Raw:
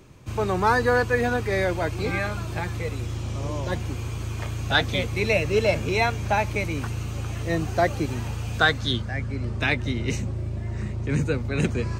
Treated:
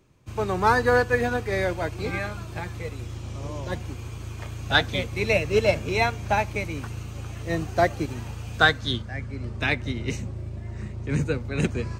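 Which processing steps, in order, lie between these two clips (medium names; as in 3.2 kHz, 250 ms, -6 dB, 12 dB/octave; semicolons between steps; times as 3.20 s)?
on a send at -22 dB: reverberation RT60 0.55 s, pre-delay 37 ms; on the sum: upward expansion 1.5:1, over -42 dBFS; trim +2 dB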